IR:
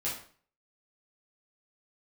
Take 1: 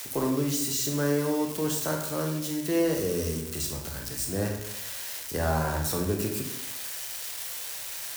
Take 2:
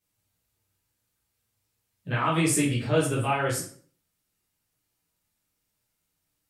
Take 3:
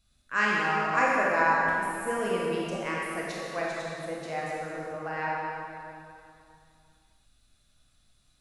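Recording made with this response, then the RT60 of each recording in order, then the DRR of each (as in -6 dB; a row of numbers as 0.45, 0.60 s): 2; 0.75, 0.45, 2.7 s; 1.5, -9.0, -5.0 dB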